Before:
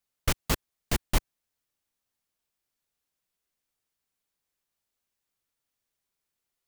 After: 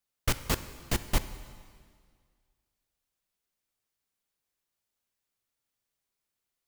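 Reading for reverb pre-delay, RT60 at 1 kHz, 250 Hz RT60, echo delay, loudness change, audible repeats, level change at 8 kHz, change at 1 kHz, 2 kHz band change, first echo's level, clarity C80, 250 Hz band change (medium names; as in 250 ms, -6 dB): 5 ms, 1.9 s, 1.9 s, no echo, -1.0 dB, no echo, -1.0 dB, -1.0 dB, -1.0 dB, no echo, 14.0 dB, -1.0 dB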